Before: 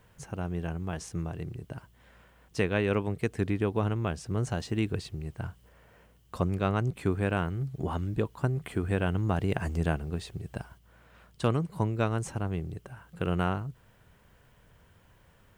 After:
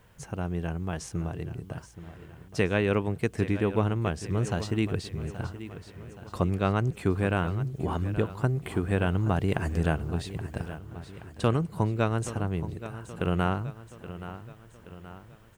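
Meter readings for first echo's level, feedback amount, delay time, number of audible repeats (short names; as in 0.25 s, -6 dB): -13.5 dB, 51%, 0.825 s, 4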